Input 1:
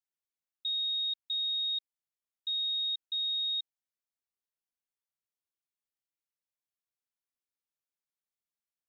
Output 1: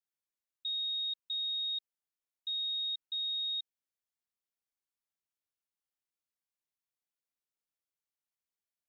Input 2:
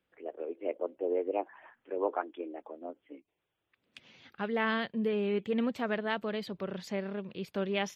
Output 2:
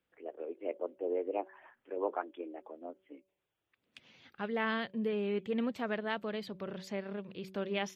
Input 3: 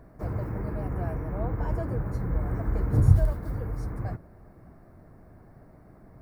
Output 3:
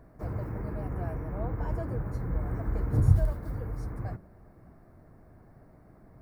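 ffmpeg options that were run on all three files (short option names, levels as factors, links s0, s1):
-af "bandreject=f=189.8:t=h:w=4,bandreject=f=379.6:t=h:w=4,bandreject=f=569.4:t=h:w=4,volume=0.708"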